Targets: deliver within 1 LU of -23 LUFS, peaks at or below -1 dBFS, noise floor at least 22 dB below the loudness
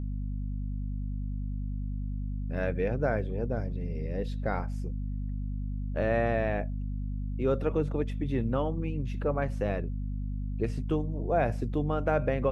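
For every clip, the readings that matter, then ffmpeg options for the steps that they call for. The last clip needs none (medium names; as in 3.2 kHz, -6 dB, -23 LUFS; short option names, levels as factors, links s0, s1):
hum 50 Hz; highest harmonic 250 Hz; hum level -30 dBFS; loudness -32.0 LUFS; peak level -14.0 dBFS; loudness target -23.0 LUFS
-> -af "bandreject=f=50:t=h:w=6,bandreject=f=100:t=h:w=6,bandreject=f=150:t=h:w=6,bandreject=f=200:t=h:w=6,bandreject=f=250:t=h:w=6"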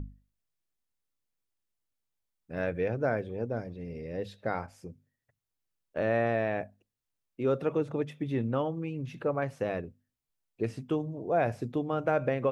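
hum not found; loudness -32.0 LUFS; peak level -14.5 dBFS; loudness target -23.0 LUFS
-> -af "volume=2.82"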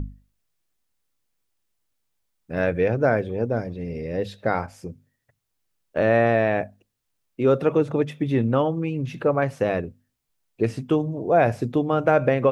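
loudness -23.0 LUFS; peak level -5.5 dBFS; noise floor -76 dBFS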